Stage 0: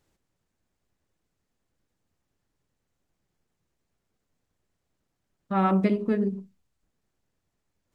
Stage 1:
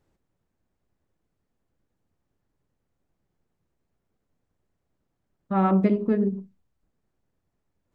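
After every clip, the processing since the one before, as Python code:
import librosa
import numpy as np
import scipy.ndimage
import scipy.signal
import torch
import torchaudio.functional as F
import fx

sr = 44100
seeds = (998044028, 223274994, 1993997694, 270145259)

y = fx.high_shelf(x, sr, hz=2000.0, db=-11.0)
y = y * 10.0 ** (2.5 / 20.0)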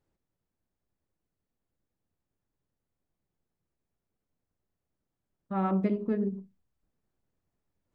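y = fx.rider(x, sr, range_db=10, speed_s=2.0)
y = y * 10.0 ** (-6.0 / 20.0)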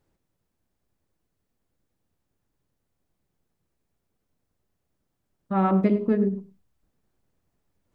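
y = x + 10.0 ** (-17.0 / 20.0) * np.pad(x, (int(102 * sr / 1000.0), 0))[:len(x)]
y = y * 10.0 ** (7.0 / 20.0)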